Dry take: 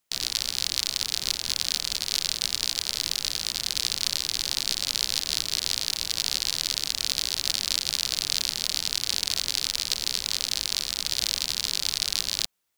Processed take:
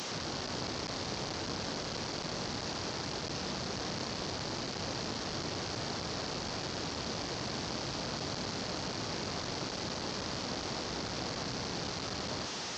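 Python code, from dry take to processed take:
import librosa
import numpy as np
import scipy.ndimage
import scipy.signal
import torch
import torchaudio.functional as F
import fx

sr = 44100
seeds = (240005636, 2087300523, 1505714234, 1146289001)

y = fx.delta_mod(x, sr, bps=32000, step_db=-24.0)
y = scipy.signal.sosfilt(scipy.signal.butter(2, 100.0, 'highpass', fs=sr, output='sos'), y)
y = fx.peak_eq(y, sr, hz=2400.0, db=-8.5, octaves=2.0)
y = y * 10.0 ** (-3.5 / 20.0)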